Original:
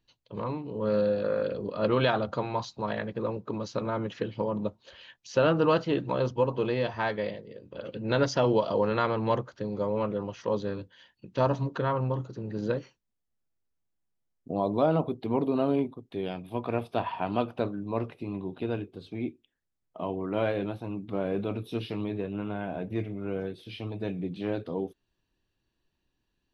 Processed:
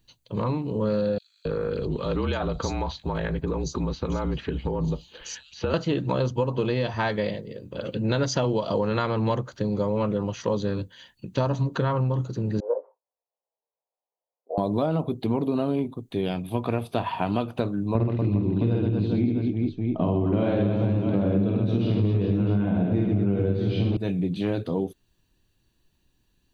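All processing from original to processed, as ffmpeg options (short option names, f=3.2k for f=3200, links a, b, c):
-filter_complex "[0:a]asettb=1/sr,asplit=3[a][b][c];[a]atrim=end=1.184[d];[b]atrim=start=1.18:end=5.74,asetpts=PTS-STARTPTS,afade=t=in:d=0.004:c=qsin,afade=t=out:st=4.556:d=0.004:c=qsin,acompressor=threshold=-31dB:ratio=3:attack=3.2:release=140:knee=1:detection=peak,afreqshift=-46,acrossover=split=4200[e][f];[e]adelay=270[g];[g][f]amix=inputs=2:normalize=0,atrim=end_sample=201096[h];[c]atrim=start=5.736[i];[d][h]acrossfade=d=0.004:c1=hsin:c2=qsin[j];[j][i]acrossfade=d=0.004:c1=qsin:c2=hsin,asettb=1/sr,asplit=3[k][l][m];[k]atrim=end=12.604[n];[l]atrim=start=12.6:end=14.58,asetpts=PTS-STARTPTS,afade=t=in:d=0.004:c=qsin,afade=t=out:st=1.976:d=0.004:c=qsin,asuperpass=centerf=690:order=8:qfactor=1.2,asplit=2[o][p];[p]adelay=17,volume=-3dB[q];[o][q]amix=inputs=2:normalize=0,atrim=end_sample=87318[r];[m]atrim=start=14.576[s];[n][r]acrossfade=d=0.004:c1=hsin:c2=qsin[t];[t][s]acrossfade=d=0.004:c1=qsin:c2=hsin,asettb=1/sr,asplit=3[u][v][w];[u]atrim=end=17.954[x];[v]atrim=start=17.95:end=23.97,asetpts=PTS-STARTPTS,afade=t=in:d=0.004:c=qsin,afade=t=out:st=6.016:d=0.004:c=qsin,lowpass=f=5.8k:w=0.5412,lowpass=f=5.8k:w=1.3066,lowshelf=f=430:g=12,aecho=1:1:50|125|237.5|406.2|659.4:0.794|0.631|0.501|0.398|0.316,atrim=end_sample=265482[y];[w]atrim=start=23.966[z];[x][y]acrossfade=d=0.004:c1=hsin:c2=qsin[aa];[aa][z]acrossfade=d=0.004:c1=qsin:c2=hsin,bass=f=250:g=6,treble=f=4k:g=9,bandreject=f=5.3k:w=6.6,acompressor=threshold=-26dB:ratio=6,volume=5.5dB"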